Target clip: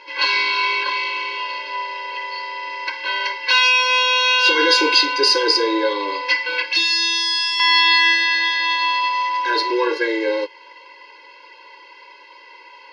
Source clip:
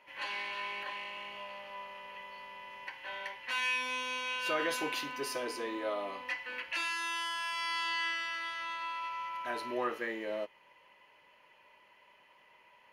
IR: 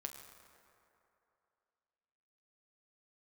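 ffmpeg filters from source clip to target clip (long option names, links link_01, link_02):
-filter_complex "[0:a]asettb=1/sr,asplit=3[link_01][link_02][link_03];[link_01]atrim=end=6.654[link_04];[link_02]atrim=start=6.65:end=7.6,asetpts=PTS-STARTPTS,afade=type=in:duration=0.004:curve=qsin,afade=type=out:start_time=0.946:duration=0.004:curve=qsin,acrossover=split=430|3000[link_05][link_06][link_07];[link_06]acompressor=threshold=-50dB:ratio=6[link_08];[link_05][link_08][link_07]amix=inputs=3:normalize=0[link_09];[link_03]atrim=start=7.596[link_10];[link_04][link_09]acrossfade=duration=0.004:curve1=hsin:curve2=qsin[link_11];[link_11][link_10]acrossfade=duration=0.004:curve1=qsin:curve2=hsin,apsyclip=29dB,lowpass=frequency=4700:width_type=q:width=6.4,afftfilt=real='re*eq(mod(floor(b*sr/1024/280),2),1)':imag='im*eq(mod(floor(b*sr/1024/280),2),1)':win_size=1024:overlap=0.75,volume=-10dB"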